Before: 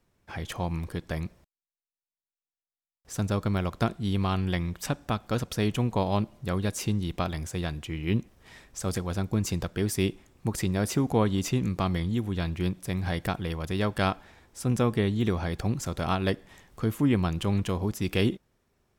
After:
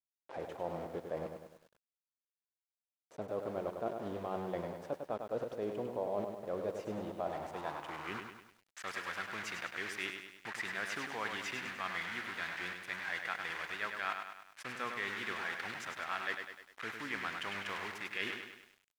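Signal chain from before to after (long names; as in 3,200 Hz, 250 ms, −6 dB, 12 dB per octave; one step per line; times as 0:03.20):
bit-depth reduction 6 bits, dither none
band-pass filter sweep 540 Hz → 1,800 Hz, 0:07.05–0:08.61
reversed playback
downward compressor 4 to 1, threshold −38 dBFS, peak gain reduction 10.5 dB
reversed playback
low-shelf EQ 230 Hz −4.5 dB
feedback echo at a low word length 101 ms, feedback 55%, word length 11 bits, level −6 dB
level +4 dB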